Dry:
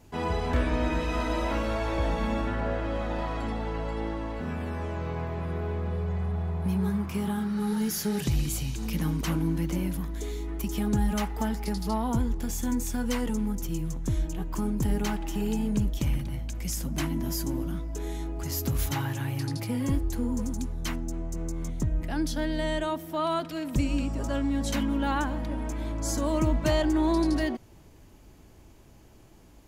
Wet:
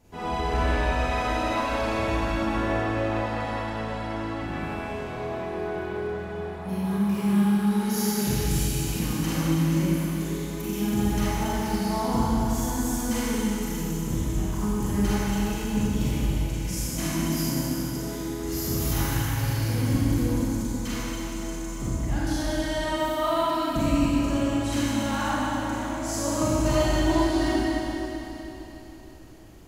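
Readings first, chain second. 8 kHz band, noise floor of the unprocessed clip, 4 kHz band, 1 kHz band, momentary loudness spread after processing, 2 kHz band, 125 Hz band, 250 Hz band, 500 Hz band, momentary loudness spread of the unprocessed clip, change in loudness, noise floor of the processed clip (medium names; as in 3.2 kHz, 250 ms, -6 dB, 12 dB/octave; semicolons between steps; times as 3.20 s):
+5.0 dB, -52 dBFS, +5.0 dB, +5.0 dB, 9 LU, +5.0 dB, +2.5 dB, +3.5 dB, +3.5 dB, 7 LU, +3.5 dB, -36 dBFS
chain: Schroeder reverb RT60 3.6 s, combs from 31 ms, DRR -10 dB; trim -5.5 dB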